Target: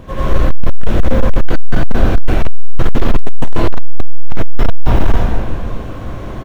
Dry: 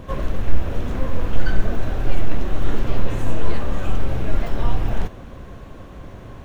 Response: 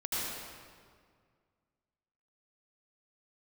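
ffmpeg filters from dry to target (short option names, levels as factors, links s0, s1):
-filter_complex "[0:a]aecho=1:1:125:0.211[s0];[1:a]atrim=start_sample=2205[s1];[s0][s1]afir=irnorm=-1:irlink=0,asoftclip=type=hard:threshold=0.473,volume=1.88"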